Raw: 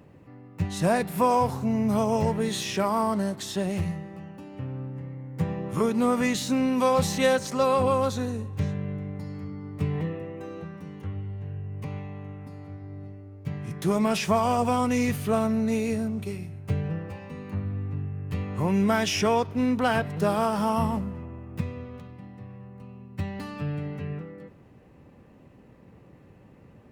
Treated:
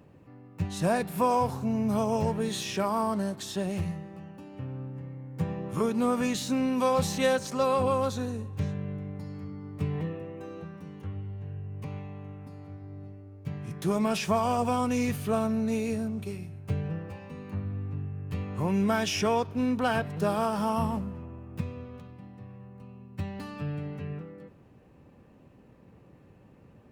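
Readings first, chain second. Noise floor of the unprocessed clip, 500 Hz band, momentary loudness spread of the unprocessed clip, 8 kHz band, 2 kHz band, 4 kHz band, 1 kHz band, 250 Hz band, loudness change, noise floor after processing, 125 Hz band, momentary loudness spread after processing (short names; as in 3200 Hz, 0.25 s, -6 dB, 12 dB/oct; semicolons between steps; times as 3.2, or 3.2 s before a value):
-53 dBFS, -3.0 dB, 17 LU, -3.0 dB, -3.5 dB, -3.0 dB, -3.0 dB, -3.0 dB, -3.0 dB, -56 dBFS, -3.0 dB, 17 LU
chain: notch 2000 Hz, Q 16; gain -3 dB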